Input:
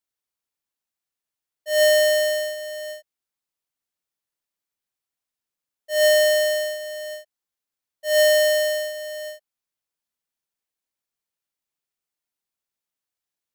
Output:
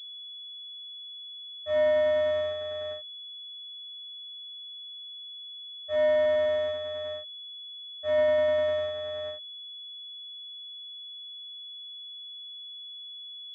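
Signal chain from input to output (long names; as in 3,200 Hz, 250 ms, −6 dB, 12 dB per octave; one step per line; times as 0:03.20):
low-shelf EQ 280 Hz +6.5 dB
downward compressor 2 to 1, threshold −21 dBFS, peak gain reduction 4.5 dB
switching amplifier with a slow clock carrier 3,400 Hz
level −3 dB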